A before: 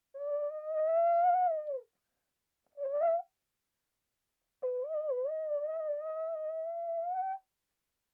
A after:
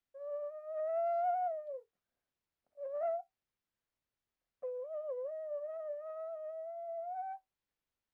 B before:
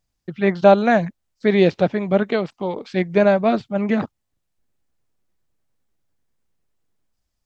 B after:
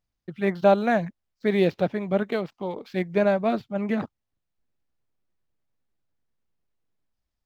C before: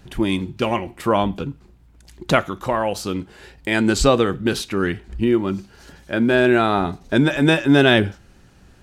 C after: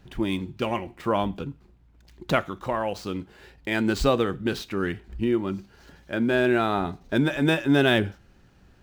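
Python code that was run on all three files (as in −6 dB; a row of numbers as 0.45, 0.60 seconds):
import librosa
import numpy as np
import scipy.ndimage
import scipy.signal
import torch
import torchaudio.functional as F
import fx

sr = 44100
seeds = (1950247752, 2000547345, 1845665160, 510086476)

y = scipy.signal.medfilt(x, 5)
y = y * librosa.db_to_amplitude(-6.0)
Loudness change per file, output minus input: −6.0, −6.0, −6.0 LU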